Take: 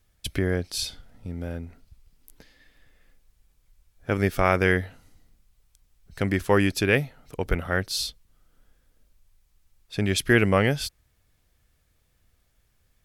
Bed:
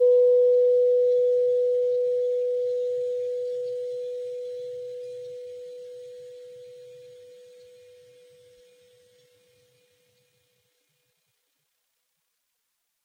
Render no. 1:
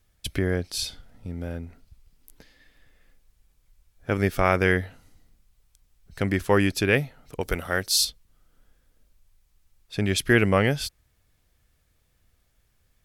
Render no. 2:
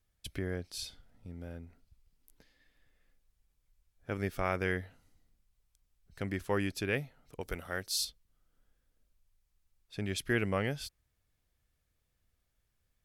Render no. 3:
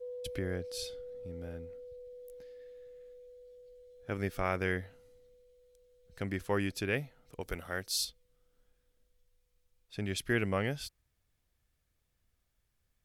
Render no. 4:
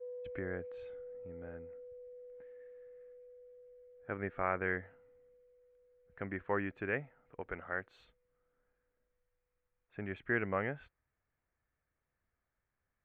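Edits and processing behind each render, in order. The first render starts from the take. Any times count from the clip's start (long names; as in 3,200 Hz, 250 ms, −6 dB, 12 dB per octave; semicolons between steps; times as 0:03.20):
0:07.41–0:08.05: bass and treble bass −5 dB, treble +10 dB
level −11.5 dB
mix in bed −25 dB
inverse Chebyshev low-pass filter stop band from 4,700 Hz, stop band 50 dB; spectral tilt +2.5 dB per octave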